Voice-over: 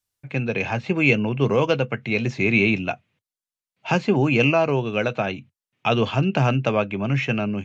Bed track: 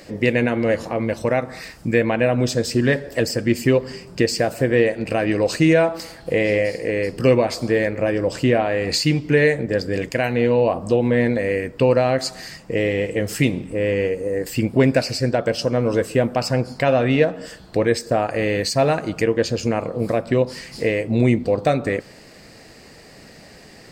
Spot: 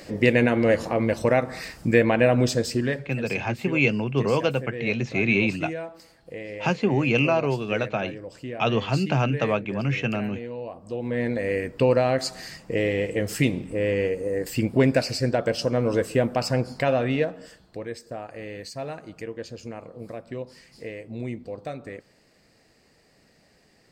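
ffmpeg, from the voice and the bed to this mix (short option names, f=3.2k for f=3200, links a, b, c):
-filter_complex "[0:a]adelay=2750,volume=-3dB[a];[1:a]volume=13.5dB,afade=t=out:st=2.35:d=0.81:silence=0.141254,afade=t=in:st=10.84:d=0.75:silence=0.199526,afade=t=out:st=16.68:d=1.11:silence=0.237137[b];[a][b]amix=inputs=2:normalize=0"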